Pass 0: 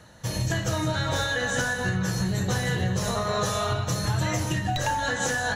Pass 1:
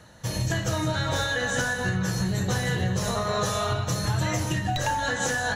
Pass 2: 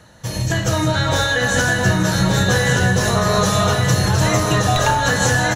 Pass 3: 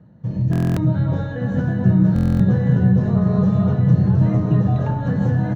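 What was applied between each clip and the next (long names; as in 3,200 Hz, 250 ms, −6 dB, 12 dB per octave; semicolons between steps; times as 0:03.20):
no processing that can be heard
automatic gain control gain up to 5 dB; single-tap delay 1,175 ms −3.5 dB; level +3.5 dB
resonant band-pass 170 Hz, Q 1.9; high-frequency loss of the air 85 metres; buffer that repeats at 0:00.51/0:02.14, samples 1,024, times 10; level +6.5 dB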